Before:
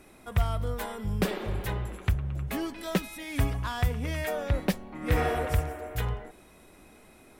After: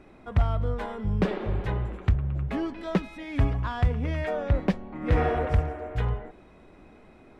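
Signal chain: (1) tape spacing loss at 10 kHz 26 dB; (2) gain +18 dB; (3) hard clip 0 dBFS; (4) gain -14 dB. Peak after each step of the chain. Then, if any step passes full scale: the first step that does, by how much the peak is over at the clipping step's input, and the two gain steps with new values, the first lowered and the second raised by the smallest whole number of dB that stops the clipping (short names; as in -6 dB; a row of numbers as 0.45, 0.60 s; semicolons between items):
-13.5, +4.5, 0.0, -14.0 dBFS; step 2, 4.5 dB; step 2 +13 dB, step 4 -9 dB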